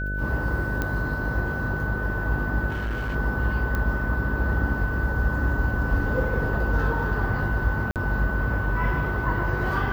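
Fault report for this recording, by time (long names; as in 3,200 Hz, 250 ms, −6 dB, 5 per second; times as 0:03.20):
mains buzz 50 Hz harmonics 13 −29 dBFS
whistle 1,500 Hz −30 dBFS
0:00.82: click −13 dBFS
0:02.69–0:03.16: clipping −24.5 dBFS
0:03.75: click −15 dBFS
0:07.91–0:07.96: drop-out 48 ms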